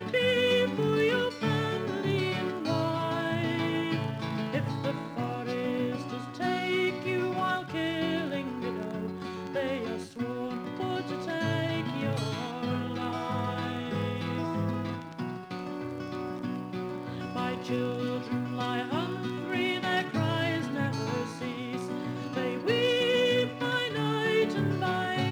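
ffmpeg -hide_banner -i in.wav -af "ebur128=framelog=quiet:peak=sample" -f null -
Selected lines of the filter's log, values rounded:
Integrated loudness:
  I:         -30.6 LUFS
  Threshold: -40.6 LUFS
Loudness range:
  LRA:         5.9 LU
  Threshold: -51.2 LUFS
  LRA low:   -34.1 LUFS
  LRA high:  -28.2 LUFS
Sample peak:
  Peak:      -14.8 dBFS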